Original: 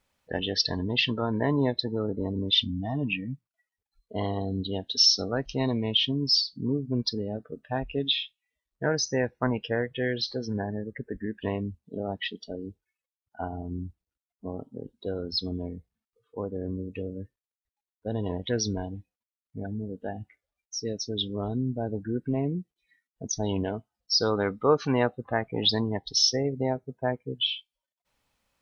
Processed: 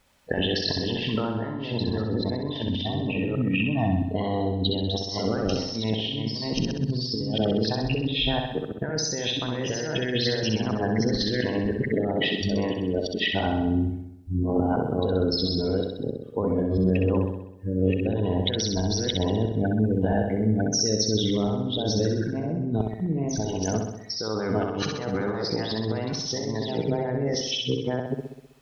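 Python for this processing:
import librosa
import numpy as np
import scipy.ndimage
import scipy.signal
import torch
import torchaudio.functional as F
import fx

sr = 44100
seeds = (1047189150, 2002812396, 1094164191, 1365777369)

y = fx.reverse_delay(x, sr, ms=671, wet_db=-1.0)
y = fx.over_compress(y, sr, threshold_db=-33.0, ratio=-1.0)
y = fx.room_flutter(y, sr, wall_m=11.0, rt60_s=0.82)
y = y * librosa.db_to_amplitude(5.0)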